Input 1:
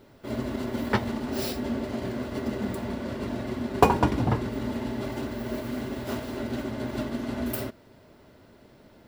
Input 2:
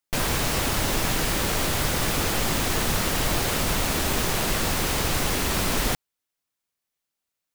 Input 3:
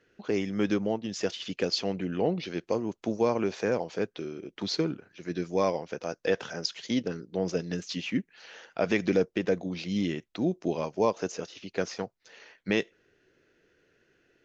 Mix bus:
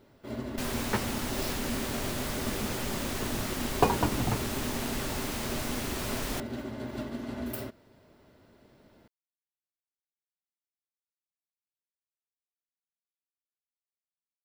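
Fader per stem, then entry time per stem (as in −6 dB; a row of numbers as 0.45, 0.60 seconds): −5.5 dB, −10.5 dB, muted; 0.00 s, 0.45 s, muted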